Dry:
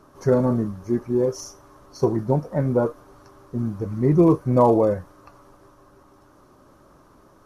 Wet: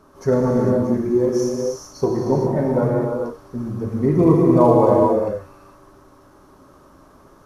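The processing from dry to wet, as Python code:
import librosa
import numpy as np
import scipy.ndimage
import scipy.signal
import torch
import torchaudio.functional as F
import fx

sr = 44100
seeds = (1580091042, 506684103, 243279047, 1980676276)

y = fx.rev_gated(x, sr, seeds[0], gate_ms=480, shape='flat', drr_db=-2.0)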